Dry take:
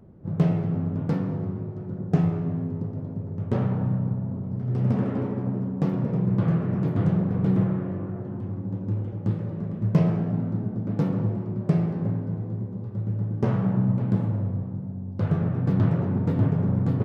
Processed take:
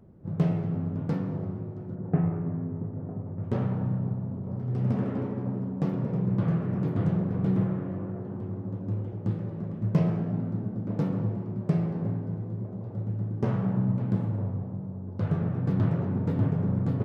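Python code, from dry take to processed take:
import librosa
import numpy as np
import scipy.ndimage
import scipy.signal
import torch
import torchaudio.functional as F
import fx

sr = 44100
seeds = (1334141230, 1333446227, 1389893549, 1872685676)

p1 = fx.lowpass(x, sr, hz=2100.0, slope=24, at=(1.95, 3.44))
p2 = p1 + fx.echo_wet_bandpass(p1, sr, ms=954, feedback_pct=67, hz=540.0, wet_db=-12.5, dry=0)
y = p2 * librosa.db_to_amplitude(-3.5)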